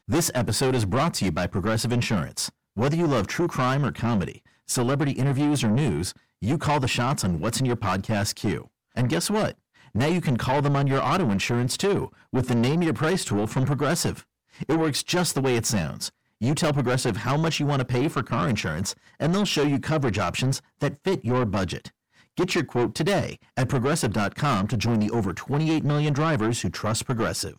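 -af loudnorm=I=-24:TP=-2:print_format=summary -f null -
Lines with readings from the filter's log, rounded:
Input Integrated:    -24.7 LUFS
Input True Peak:     -16.4 dBTP
Input LRA:             1.9 LU
Input Threshold:     -34.9 LUFS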